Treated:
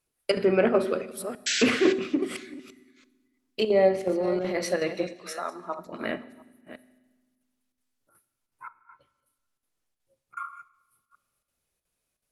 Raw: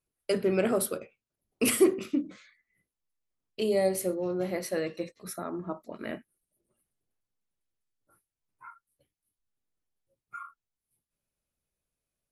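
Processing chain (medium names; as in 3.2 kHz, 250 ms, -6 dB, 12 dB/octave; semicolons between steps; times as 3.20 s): chunks repeated in reverse 338 ms, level -12.5 dB; 5.18–5.79 s: three-band isolator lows -17 dB, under 500 Hz, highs -17 dB, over 8 kHz; 8.67–10.37 s: low-pass that closes with the level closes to 530 Hz, closed at -48 dBFS; square tremolo 2.7 Hz, depth 60%, duty 85%; 1.46–1.93 s: painted sound noise 1.4–8 kHz -33 dBFS; 4.06–4.66 s: transient shaper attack -12 dB, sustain +2 dB; low-pass that closes with the level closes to 2.2 kHz, closed at -24 dBFS; bass shelf 360 Hz -6.5 dB; reverberation RT60 1.3 s, pre-delay 4 ms, DRR 15 dB; trim +8 dB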